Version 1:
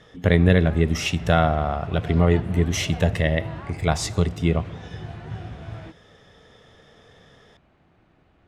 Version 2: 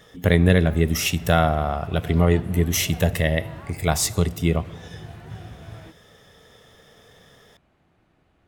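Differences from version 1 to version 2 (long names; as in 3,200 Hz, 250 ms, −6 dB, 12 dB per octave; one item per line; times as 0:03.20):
background −4.0 dB
master: remove high-frequency loss of the air 79 metres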